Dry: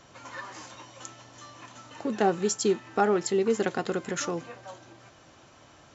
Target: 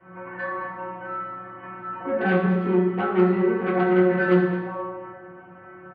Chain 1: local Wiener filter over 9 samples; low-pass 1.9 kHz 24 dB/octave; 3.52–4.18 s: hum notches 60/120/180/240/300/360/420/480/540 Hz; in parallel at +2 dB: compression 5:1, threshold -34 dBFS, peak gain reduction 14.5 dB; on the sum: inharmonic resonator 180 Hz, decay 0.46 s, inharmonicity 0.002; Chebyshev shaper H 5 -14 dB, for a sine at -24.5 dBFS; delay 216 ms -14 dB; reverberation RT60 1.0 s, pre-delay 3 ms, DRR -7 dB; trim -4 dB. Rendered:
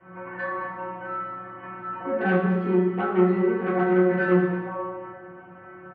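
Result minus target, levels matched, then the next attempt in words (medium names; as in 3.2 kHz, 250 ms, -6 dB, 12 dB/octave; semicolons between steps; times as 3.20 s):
compression: peak gain reduction +5.5 dB
local Wiener filter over 9 samples; low-pass 1.9 kHz 24 dB/octave; 3.52–4.18 s: hum notches 60/120/180/240/300/360/420/480/540 Hz; in parallel at +2 dB: compression 5:1, threshold -27 dBFS, peak gain reduction 9 dB; on the sum: inharmonic resonator 180 Hz, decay 0.46 s, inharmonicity 0.002; Chebyshev shaper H 5 -14 dB, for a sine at -24.5 dBFS; delay 216 ms -14 dB; reverberation RT60 1.0 s, pre-delay 3 ms, DRR -7 dB; trim -4 dB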